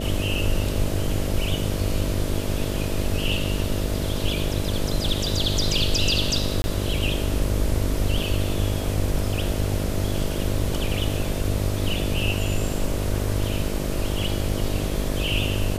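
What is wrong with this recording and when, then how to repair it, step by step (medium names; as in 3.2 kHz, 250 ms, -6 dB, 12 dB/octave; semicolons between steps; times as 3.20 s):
buzz 50 Hz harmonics 13 -28 dBFS
6.62–6.64 s: dropout 21 ms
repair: de-hum 50 Hz, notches 13; interpolate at 6.62 s, 21 ms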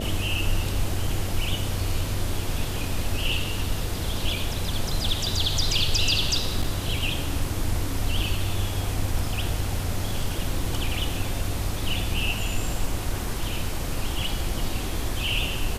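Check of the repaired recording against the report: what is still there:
nothing left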